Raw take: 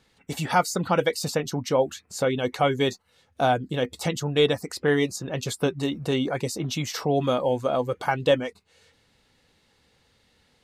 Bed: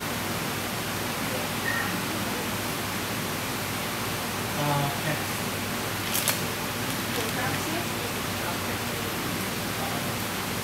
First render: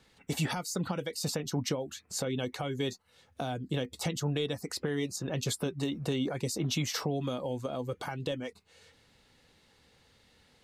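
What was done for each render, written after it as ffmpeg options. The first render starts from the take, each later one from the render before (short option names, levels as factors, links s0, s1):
-filter_complex "[0:a]alimiter=limit=0.1:level=0:latency=1:release=353,acrossover=split=350|3000[s0][s1][s2];[s1]acompressor=threshold=0.0158:ratio=6[s3];[s0][s3][s2]amix=inputs=3:normalize=0"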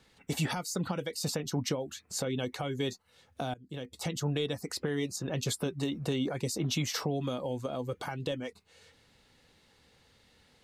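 -filter_complex "[0:a]asplit=2[s0][s1];[s0]atrim=end=3.54,asetpts=PTS-STARTPTS,afade=t=out:st=3.536:d=0.004:c=hsin:silence=0.0841395[s2];[s1]atrim=start=3.54,asetpts=PTS-STARTPTS,afade=t=in:d=0.68:silence=0.0841395[s3];[s2][s3]concat=n=2:v=0:a=1"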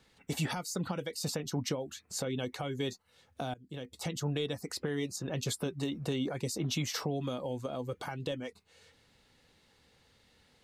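-af "volume=0.794"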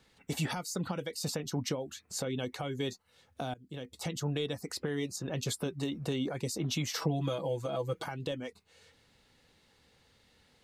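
-filter_complex "[0:a]asettb=1/sr,asplit=3[s0][s1][s2];[s0]atrim=end=7.014[s3];[s1]atrim=start=7.01:end=8.04,asetpts=PTS-STARTPTS,afade=t=in:d=0.004:c=qsin,afade=t=out:st=1.026:d=0.004:c=qsin,aecho=1:1:6.1:1,atrim=end_sample=45423[s4];[s2]atrim=start=8.036[s5];[s3][s4]acrossfade=d=0.004:c1=hsin:c2=qsin[s6];[s6][s5]acrossfade=d=0.004:c1=qsin:c2=hsin"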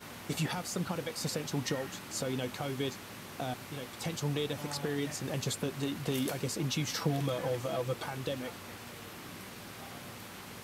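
-filter_complex "[1:a]volume=0.15[s0];[0:a][s0]amix=inputs=2:normalize=0"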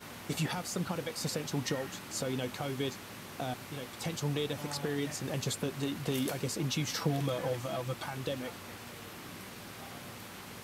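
-filter_complex "[0:a]asettb=1/sr,asplit=3[s0][s1][s2];[s0]atrim=end=7.534[s3];[s1]atrim=start=7.53:end=8.15,asetpts=PTS-STARTPTS,afade=t=in:d=0.004:c=qsin,afade=t=out:st=0.616:d=0.004:c=qsin,equalizer=f=450:t=o:w=0.38:g=-10[s4];[s2]atrim=start=8.146[s5];[s3][s4]acrossfade=d=0.004:c1=hsin:c2=qsin[s6];[s6][s5]acrossfade=d=0.004:c1=qsin:c2=hsin"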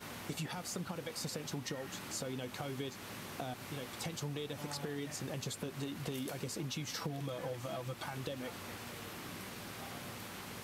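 -af "acompressor=threshold=0.0126:ratio=4"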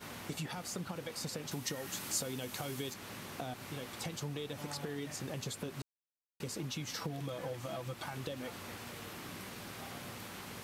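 -filter_complex "[0:a]asettb=1/sr,asplit=3[s0][s1][s2];[s0]atrim=end=1.514[s3];[s1]atrim=start=1.51:end=2.94,asetpts=PTS-STARTPTS,afade=t=in:d=0.004:c=qsin,afade=t=out:st=1.426:d=0.004:c=qsin,highshelf=f=5300:g=11[s4];[s2]atrim=start=2.936[s5];[s3][s4]acrossfade=d=0.004:c1=hsin:c2=qsin[s6];[s6][s5]acrossfade=d=0.004:c1=qsin:c2=hsin,asplit=3[s7][s8][s9];[s7]atrim=end=5.82,asetpts=PTS-STARTPTS,afade=t=out:st=5.816:d=0.004:c=hsin[s10];[s8]atrim=start=5.82:end=6.4,asetpts=PTS-STARTPTS,volume=0[s11];[s9]atrim=start=6.4,asetpts=PTS-STARTPTS,afade=t=in:d=0.004:c=hsin[s12];[s10][s11][s12]concat=n=3:v=0:a=1"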